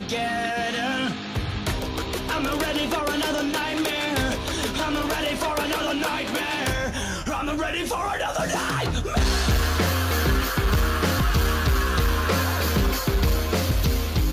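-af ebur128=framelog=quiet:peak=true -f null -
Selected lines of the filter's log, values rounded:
Integrated loudness:
  I:         -24.2 LUFS
  Threshold: -34.1 LUFS
Loudness range:
  LRA:         3.1 LU
  Threshold: -44.1 LUFS
  LRA low:   -25.6 LUFS
  LRA high:  -22.4 LUFS
True peak:
  Peak:      -13.9 dBFS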